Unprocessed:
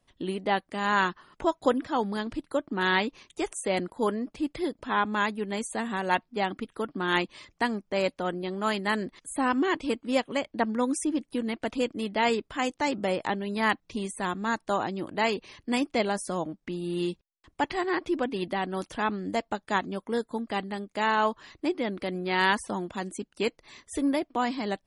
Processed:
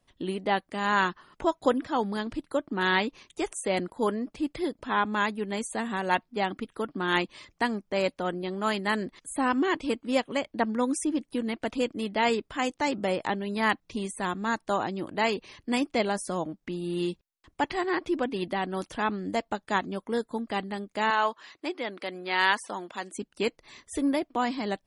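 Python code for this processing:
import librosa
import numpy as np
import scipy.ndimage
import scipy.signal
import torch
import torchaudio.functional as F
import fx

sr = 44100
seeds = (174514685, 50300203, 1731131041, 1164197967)

y = fx.weighting(x, sr, curve='A', at=(21.1, 23.14))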